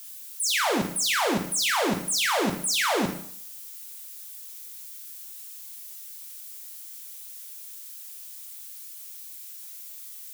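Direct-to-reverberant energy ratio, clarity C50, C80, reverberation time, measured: 2.5 dB, 7.0 dB, 11.0 dB, 0.60 s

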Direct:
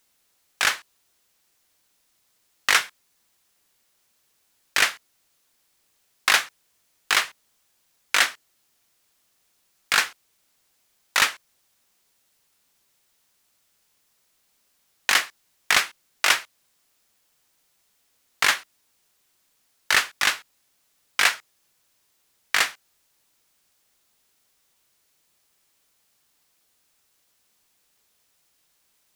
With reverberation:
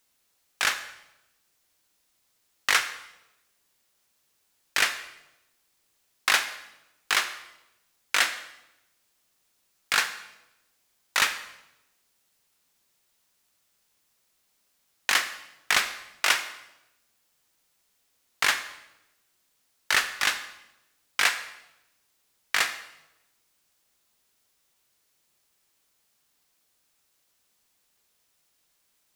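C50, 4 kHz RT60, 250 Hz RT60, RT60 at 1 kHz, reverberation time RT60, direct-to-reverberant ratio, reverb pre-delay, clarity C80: 11.5 dB, 0.80 s, 1.1 s, 0.85 s, 0.95 s, 10.5 dB, 33 ms, 13.5 dB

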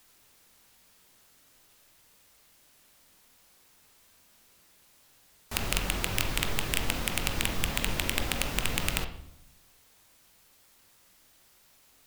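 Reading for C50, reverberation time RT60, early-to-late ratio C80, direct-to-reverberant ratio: 9.5 dB, 0.80 s, 12.5 dB, 5.5 dB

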